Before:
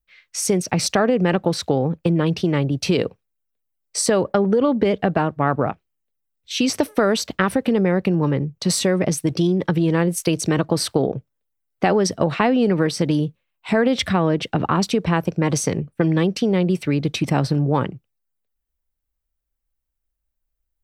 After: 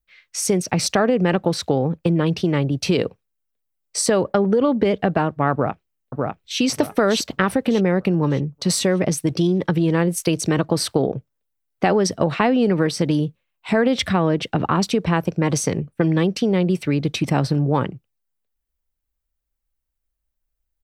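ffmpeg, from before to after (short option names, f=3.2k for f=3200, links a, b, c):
-filter_complex "[0:a]asplit=2[a][b];[b]afade=t=in:st=5.52:d=0.01,afade=t=out:st=6.6:d=0.01,aecho=0:1:600|1200|1800|2400|3000:0.749894|0.262463|0.091862|0.0321517|0.0112531[c];[a][c]amix=inputs=2:normalize=0"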